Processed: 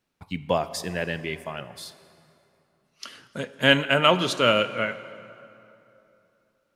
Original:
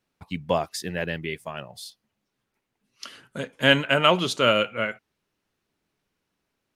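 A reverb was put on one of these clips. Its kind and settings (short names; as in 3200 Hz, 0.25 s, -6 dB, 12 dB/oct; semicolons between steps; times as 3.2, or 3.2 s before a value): plate-style reverb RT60 2.9 s, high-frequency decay 0.65×, DRR 13 dB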